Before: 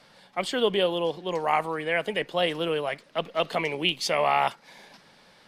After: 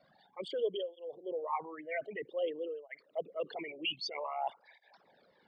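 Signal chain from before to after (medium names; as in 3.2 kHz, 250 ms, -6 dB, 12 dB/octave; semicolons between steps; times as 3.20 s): resonances exaggerated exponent 3; cancelling through-zero flanger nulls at 0.52 Hz, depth 2.4 ms; trim -8 dB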